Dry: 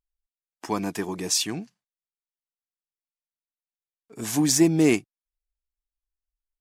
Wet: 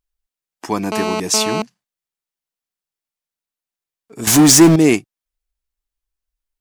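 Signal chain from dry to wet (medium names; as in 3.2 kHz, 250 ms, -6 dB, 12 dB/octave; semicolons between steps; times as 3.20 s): 0.92–1.62 s: mobile phone buzz -27 dBFS; 4.27–4.76 s: power-law waveshaper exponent 0.5; trim +6.5 dB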